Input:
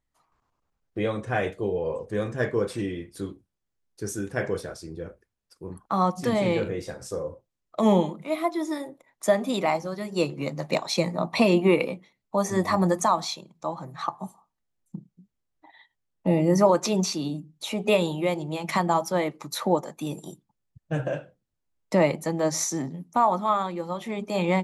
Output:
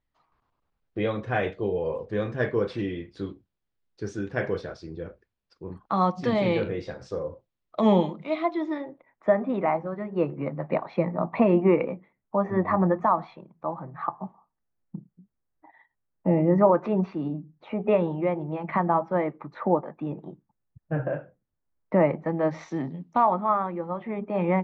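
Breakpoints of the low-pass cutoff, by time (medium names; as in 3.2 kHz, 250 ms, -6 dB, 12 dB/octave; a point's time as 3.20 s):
low-pass 24 dB/octave
8.24 s 4.5 kHz
9.34 s 1.9 kHz
22.20 s 1.9 kHz
23.07 s 4.3 kHz
23.46 s 2 kHz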